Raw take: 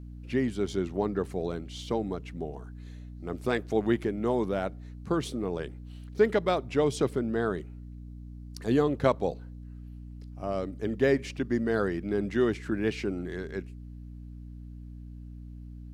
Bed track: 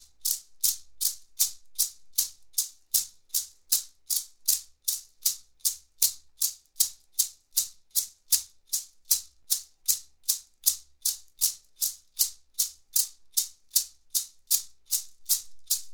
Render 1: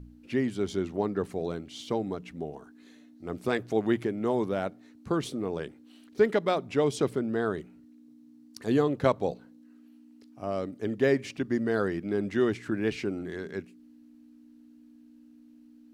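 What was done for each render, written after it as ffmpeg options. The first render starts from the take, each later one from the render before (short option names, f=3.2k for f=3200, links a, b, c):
-af "bandreject=f=60:t=h:w=4,bandreject=f=120:t=h:w=4,bandreject=f=180:t=h:w=4"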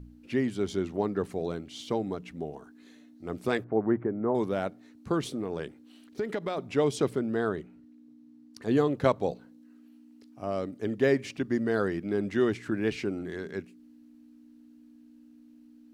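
-filter_complex "[0:a]asettb=1/sr,asplit=3[a][b][c];[a]atrim=end=3.644[d];[b]atrim=start=3.64:end=4.35,asetpts=PTS-STARTPTS,afade=t=in:d=0.004:c=qsin,afade=t=out:st=0.706:d=0.004:c=qsin,lowpass=f=1.5k:w=0.5412,lowpass=f=1.5k:w=1.3066[e];[c]atrim=start=4.346[f];[d][e]acrossfade=d=0.004:c1=hsin:c2=qsin[g];[g][f]acrossfade=d=0.004:c1=qsin:c2=hsin,asettb=1/sr,asplit=3[h][i][j];[h]atrim=end=5.244[k];[i]atrim=start=5.24:end=6.58,asetpts=PTS-STARTPTS,afade=t=in:d=0.004:c=qsin,afade=t=out:st=1.336:d=0.004:c=qsin,acompressor=threshold=-27dB:ratio=6:attack=3.2:release=140:knee=1:detection=peak[l];[j]atrim=start=6.576[m];[k][l]acrossfade=d=0.004:c1=hsin:c2=qsin[n];[n][m]acrossfade=d=0.004:c1=qsin:c2=hsin,asettb=1/sr,asplit=3[o][p][q];[o]atrim=end=7.494[r];[p]atrim=start=7.49:end=8.77,asetpts=PTS-STARTPTS,afade=t=in:d=0.004:c=qsin,afade=t=out:st=1.276:d=0.004:c=qsin,highshelf=f=5.1k:g=-8.5[s];[q]atrim=start=8.766[t];[r][s]acrossfade=d=0.004:c1=hsin:c2=qsin[u];[u][t]acrossfade=d=0.004:c1=qsin:c2=hsin"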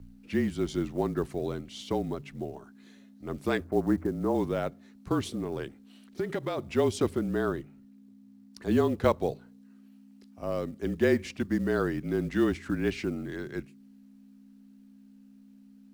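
-af "afreqshift=-34,acrusher=bits=8:mode=log:mix=0:aa=0.000001"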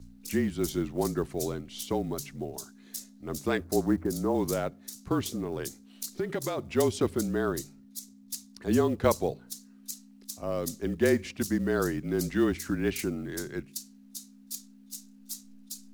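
-filter_complex "[1:a]volume=-14.5dB[a];[0:a][a]amix=inputs=2:normalize=0"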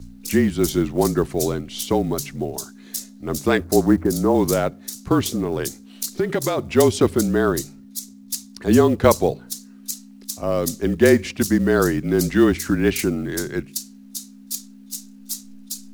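-af "volume=10dB,alimiter=limit=-2dB:level=0:latency=1"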